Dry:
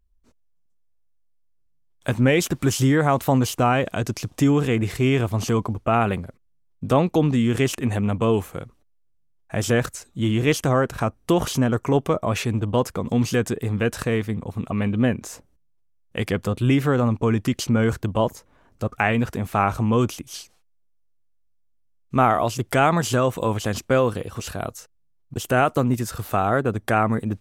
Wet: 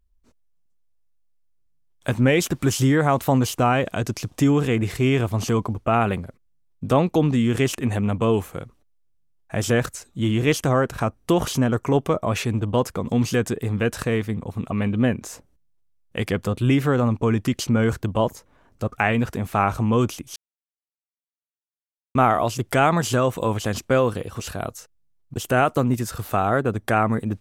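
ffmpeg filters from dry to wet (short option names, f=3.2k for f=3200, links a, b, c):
-filter_complex "[0:a]asplit=3[a][b][c];[a]atrim=end=20.36,asetpts=PTS-STARTPTS,afade=t=out:st=20.356:d=0.004:c=hsin[d];[b]atrim=start=20.36:end=22.15,asetpts=PTS-STARTPTS,volume=0[e];[c]atrim=start=22.15,asetpts=PTS-STARTPTS,afade=t=in:d=0.004:c=hsin[f];[d][e][f]concat=n=3:v=0:a=1"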